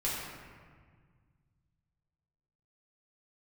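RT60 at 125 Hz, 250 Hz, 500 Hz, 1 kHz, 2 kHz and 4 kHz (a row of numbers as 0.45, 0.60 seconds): 3.0, 2.4, 1.7, 1.7, 1.6, 1.0 seconds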